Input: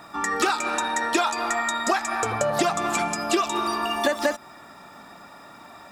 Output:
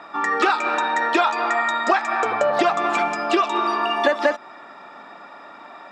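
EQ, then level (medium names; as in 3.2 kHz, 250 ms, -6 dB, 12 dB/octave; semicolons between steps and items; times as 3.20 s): band-pass 320–3100 Hz; +5.0 dB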